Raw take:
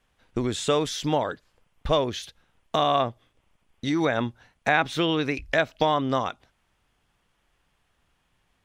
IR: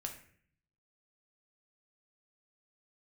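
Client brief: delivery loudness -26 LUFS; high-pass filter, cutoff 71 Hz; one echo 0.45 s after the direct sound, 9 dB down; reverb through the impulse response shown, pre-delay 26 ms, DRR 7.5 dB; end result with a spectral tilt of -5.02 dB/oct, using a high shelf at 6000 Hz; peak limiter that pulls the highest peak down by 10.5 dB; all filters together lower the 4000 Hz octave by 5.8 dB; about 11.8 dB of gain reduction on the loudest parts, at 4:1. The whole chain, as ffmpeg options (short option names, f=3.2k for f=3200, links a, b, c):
-filter_complex "[0:a]highpass=71,equalizer=f=4k:t=o:g=-6,highshelf=f=6k:g=-4.5,acompressor=threshold=-32dB:ratio=4,alimiter=level_in=1.5dB:limit=-24dB:level=0:latency=1,volume=-1.5dB,aecho=1:1:450:0.355,asplit=2[a][b];[1:a]atrim=start_sample=2205,adelay=26[c];[b][c]afir=irnorm=-1:irlink=0,volume=-6dB[d];[a][d]amix=inputs=2:normalize=0,volume=11.5dB"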